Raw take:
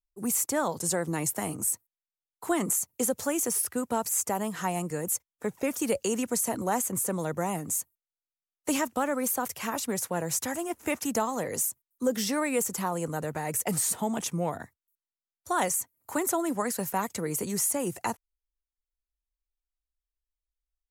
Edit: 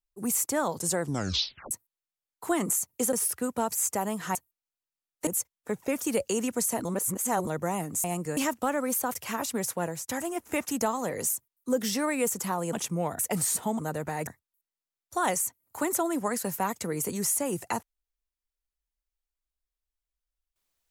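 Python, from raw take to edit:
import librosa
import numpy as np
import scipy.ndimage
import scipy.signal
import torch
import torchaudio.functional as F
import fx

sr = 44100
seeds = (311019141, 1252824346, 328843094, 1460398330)

y = fx.edit(x, sr, fx.tape_stop(start_s=1.01, length_s=0.7),
    fx.cut(start_s=3.13, length_s=0.34),
    fx.swap(start_s=4.69, length_s=0.33, other_s=7.79, other_length_s=0.92),
    fx.reverse_span(start_s=6.6, length_s=0.62),
    fx.fade_out_to(start_s=10.18, length_s=0.25, floor_db=-23.0),
    fx.swap(start_s=13.07, length_s=0.48, other_s=14.15, other_length_s=0.46), tone=tone)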